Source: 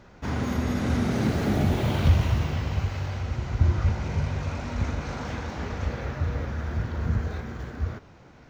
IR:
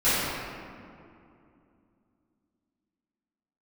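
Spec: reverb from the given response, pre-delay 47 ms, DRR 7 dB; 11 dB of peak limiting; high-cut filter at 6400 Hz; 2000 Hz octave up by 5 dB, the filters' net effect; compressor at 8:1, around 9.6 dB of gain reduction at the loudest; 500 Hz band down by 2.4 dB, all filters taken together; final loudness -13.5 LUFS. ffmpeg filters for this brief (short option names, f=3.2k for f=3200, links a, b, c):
-filter_complex "[0:a]lowpass=6.4k,equalizer=f=500:t=o:g=-3.5,equalizer=f=2k:t=o:g=6.5,acompressor=threshold=-24dB:ratio=8,alimiter=level_in=2.5dB:limit=-24dB:level=0:latency=1,volume=-2.5dB,asplit=2[a][b];[1:a]atrim=start_sample=2205,adelay=47[c];[b][c]afir=irnorm=-1:irlink=0,volume=-24.5dB[d];[a][d]amix=inputs=2:normalize=0,volume=21dB"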